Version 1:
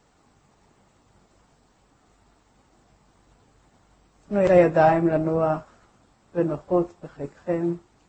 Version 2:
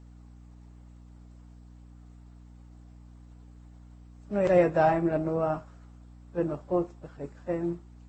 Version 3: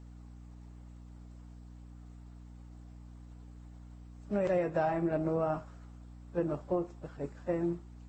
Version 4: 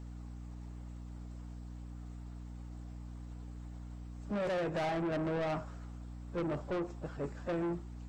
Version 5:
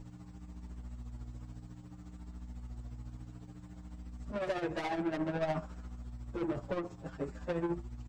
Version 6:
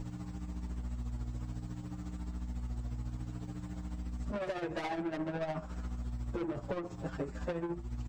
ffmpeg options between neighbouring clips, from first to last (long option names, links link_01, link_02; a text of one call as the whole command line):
ffmpeg -i in.wav -af "aeval=exprs='val(0)+0.00708*(sin(2*PI*60*n/s)+sin(2*PI*2*60*n/s)/2+sin(2*PI*3*60*n/s)/3+sin(2*PI*4*60*n/s)/4+sin(2*PI*5*60*n/s)/5)':channel_layout=same,volume=-5.5dB" out.wav
ffmpeg -i in.wav -af "acompressor=threshold=-27dB:ratio=6" out.wav
ffmpeg -i in.wav -af "asoftclip=type=tanh:threshold=-36dB,volume=4.5dB" out.wav
ffmpeg -i in.wav -filter_complex "[0:a]tremolo=f=14:d=0.63,asplit=2[link_01][link_02];[link_02]adelay=6.9,afreqshift=-0.59[link_03];[link_01][link_03]amix=inputs=2:normalize=1,volume=5.5dB" out.wav
ffmpeg -i in.wav -af "acompressor=threshold=-42dB:ratio=6,volume=8dB" out.wav